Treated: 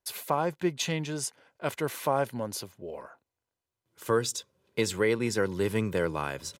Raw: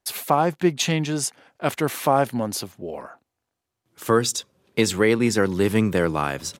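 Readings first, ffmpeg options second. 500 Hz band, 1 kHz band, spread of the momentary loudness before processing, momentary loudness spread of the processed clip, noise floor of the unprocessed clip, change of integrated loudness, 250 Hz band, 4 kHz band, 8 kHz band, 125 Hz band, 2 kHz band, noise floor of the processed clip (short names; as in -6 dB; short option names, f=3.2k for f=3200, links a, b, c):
-6.5 dB, -9.0 dB, 11 LU, 11 LU, -83 dBFS, -8.0 dB, -10.0 dB, -7.5 dB, -7.5 dB, -8.0 dB, -7.0 dB, under -85 dBFS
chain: -af "aecho=1:1:2:0.31,volume=-8dB"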